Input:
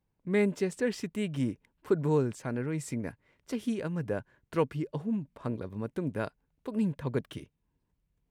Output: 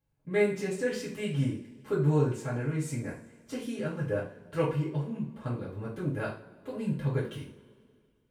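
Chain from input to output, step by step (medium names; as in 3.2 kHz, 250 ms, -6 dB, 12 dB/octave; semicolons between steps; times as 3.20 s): two-slope reverb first 0.39 s, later 2.2 s, from -22 dB, DRR -8 dB; trim -7.5 dB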